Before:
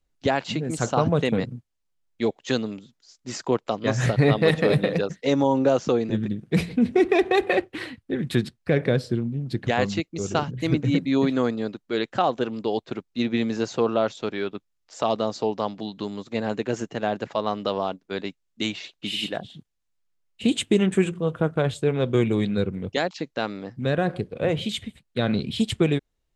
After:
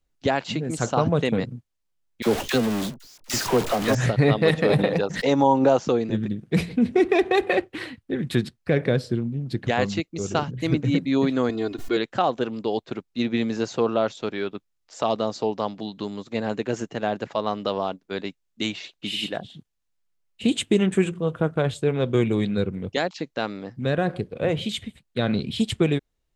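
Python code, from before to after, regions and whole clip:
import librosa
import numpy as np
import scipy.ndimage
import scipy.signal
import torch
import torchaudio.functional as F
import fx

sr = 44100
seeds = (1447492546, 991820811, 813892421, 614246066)

y = fx.chain(x, sr, fx.zero_step(step_db=-22.5),
    fx.gate_hold(open_db=-19.0, close_db=-25.0, hold_ms=71.0, range_db=-21, attack_ms=1.4, release_ms=100.0),
    fx.dispersion(late='lows', ms=45.0, hz=810.0), at=(2.22, 3.95))
y = fx.chain(y, sr, fx.peak_eq(hz=850.0, db=8.0, octaves=0.56),
    fx.pre_swell(db_per_s=88.0), at=(4.69, 5.85))
y = fx.chain(y, sr, fx.comb(ms=2.8, depth=0.9),
    fx.pre_swell(db_per_s=72.0), at=(11.49, 11.97))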